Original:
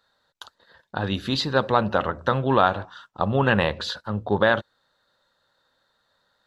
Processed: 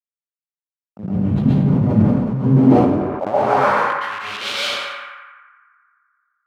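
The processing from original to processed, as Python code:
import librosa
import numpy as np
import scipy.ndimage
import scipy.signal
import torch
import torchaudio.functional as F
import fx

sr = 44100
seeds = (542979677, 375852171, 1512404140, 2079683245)

y = fx.delta_hold(x, sr, step_db=-19.0)
y = fx.highpass(y, sr, hz=95.0, slope=6)
y = fx.transient(y, sr, attack_db=-11, sustain_db=5)
y = fx.leveller(y, sr, passes=5)
y = fx.filter_sweep_bandpass(y, sr, from_hz=200.0, to_hz=4300.0, start_s=2.36, end_s=4.39, q=2.8)
y = fx.formant_shift(y, sr, semitones=-3)
y = fx.echo_banded(y, sr, ms=86, feedback_pct=80, hz=1400.0, wet_db=-6)
y = fx.rev_plate(y, sr, seeds[0], rt60_s=0.76, hf_ratio=0.75, predelay_ms=105, drr_db=-8.0)
y = fx.sustainer(y, sr, db_per_s=35.0)
y = F.gain(torch.from_numpy(y), -3.5).numpy()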